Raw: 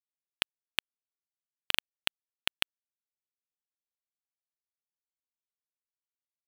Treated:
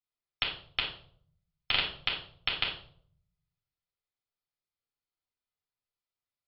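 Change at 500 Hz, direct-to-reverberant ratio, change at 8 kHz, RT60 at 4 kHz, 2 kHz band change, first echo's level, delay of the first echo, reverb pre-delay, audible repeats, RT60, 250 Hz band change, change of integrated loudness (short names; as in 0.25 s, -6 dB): +4.0 dB, -4.0 dB, under -30 dB, 0.40 s, +2.0 dB, none, none, 3 ms, none, 0.55 s, +3.0 dB, +1.5 dB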